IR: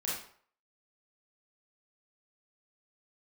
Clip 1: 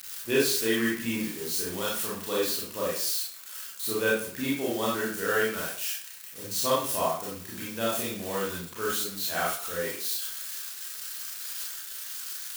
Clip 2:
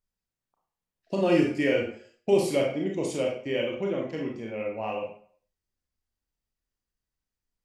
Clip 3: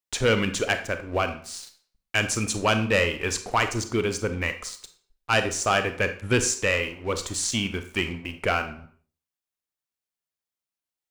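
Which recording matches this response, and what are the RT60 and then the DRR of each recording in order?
1; 0.55, 0.55, 0.55 s; -6.5, -1.0, 8.5 dB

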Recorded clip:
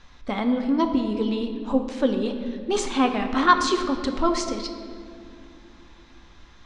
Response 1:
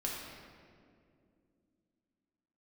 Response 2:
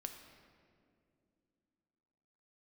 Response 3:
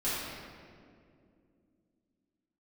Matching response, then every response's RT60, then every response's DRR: 2; 2.4, 2.5, 2.4 s; -3.5, 5.0, -12.0 dB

